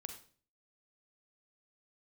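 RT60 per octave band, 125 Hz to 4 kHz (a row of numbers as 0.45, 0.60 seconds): 0.60, 0.55, 0.45, 0.40, 0.40, 0.40 seconds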